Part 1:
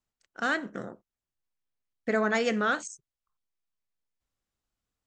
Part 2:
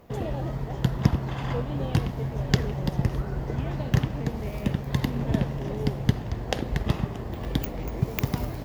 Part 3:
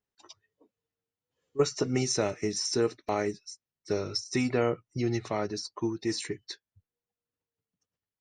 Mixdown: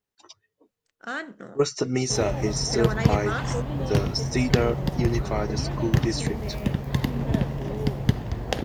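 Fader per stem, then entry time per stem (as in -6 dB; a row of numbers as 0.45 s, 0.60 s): -4.0 dB, +1.0 dB, +3.0 dB; 0.65 s, 2.00 s, 0.00 s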